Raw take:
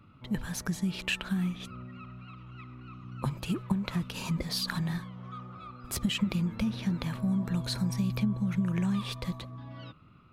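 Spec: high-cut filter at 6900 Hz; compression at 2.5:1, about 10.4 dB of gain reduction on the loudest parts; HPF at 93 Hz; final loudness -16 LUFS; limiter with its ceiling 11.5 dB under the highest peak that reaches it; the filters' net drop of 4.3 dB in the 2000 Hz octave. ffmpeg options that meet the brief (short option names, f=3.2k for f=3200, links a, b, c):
-af "highpass=93,lowpass=6.9k,equalizer=f=2k:t=o:g=-6,acompressor=threshold=-40dB:ratio=2.5,volume=28dB,alimiter=limit=-6.5dB:level=0:latency=1"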